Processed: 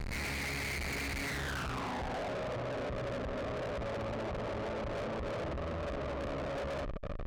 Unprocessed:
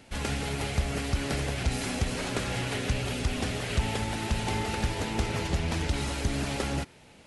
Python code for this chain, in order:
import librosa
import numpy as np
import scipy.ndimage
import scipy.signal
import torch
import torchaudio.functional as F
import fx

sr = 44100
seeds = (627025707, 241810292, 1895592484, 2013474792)

y = fx.schmitt(x, sr, flips_db=-46.5)
y = fx.filter_sweep_lowpass(y, sr, from_hz=2200.0, to_hz=590.0, start_s=1.24, end_s=2.35, q=6.2)
y = fx.tube_stage(y, sr, drive_db=38.0, bias=0.4)
y = y * librosa.db_to_amplitude(2.0)